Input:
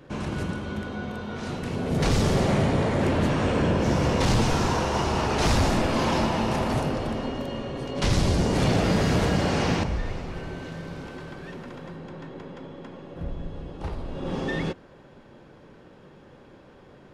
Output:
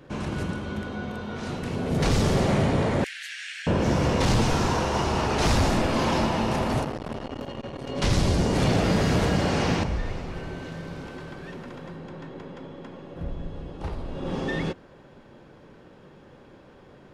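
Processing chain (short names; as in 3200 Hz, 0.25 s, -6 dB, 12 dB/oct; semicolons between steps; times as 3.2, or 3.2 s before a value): 3.04–3.67 steep high-pass 1600 Hz 72 dB/oct; 6.84–7.87 core saturation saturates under 670 Hz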